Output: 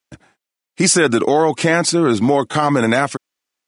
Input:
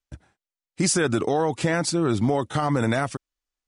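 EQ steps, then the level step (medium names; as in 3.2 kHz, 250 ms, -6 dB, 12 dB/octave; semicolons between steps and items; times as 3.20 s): high-pass 180 Hz 12 dB/octave; peaking EQ 2.3 kHz +2.5 dB; +8.5 dB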